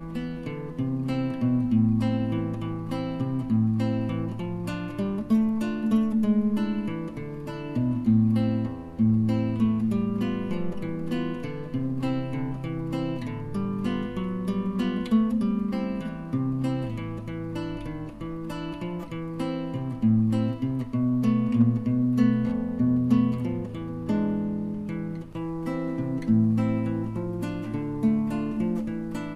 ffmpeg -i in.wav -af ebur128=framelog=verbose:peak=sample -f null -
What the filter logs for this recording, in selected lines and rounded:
Integrated loudness:
  I:         -26.9 LUFS
  Threshold: -36.9 LUFS
Loudness range:
  LRA:         5.8 LU
  Threshold: -46.9 LUFS
  LRA low:   -30.2 LUFS
  LRA high:  -24.4 LUFS
Sample peak:
  Peak:      -10.9 dBFS